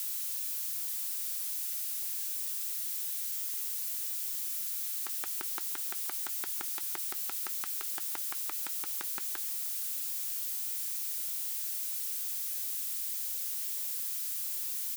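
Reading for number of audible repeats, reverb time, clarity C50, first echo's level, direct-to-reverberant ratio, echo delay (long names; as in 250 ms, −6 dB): 1, no reverb audible, no reverb audible, −23.5 dB, no reverb audible, 479 ms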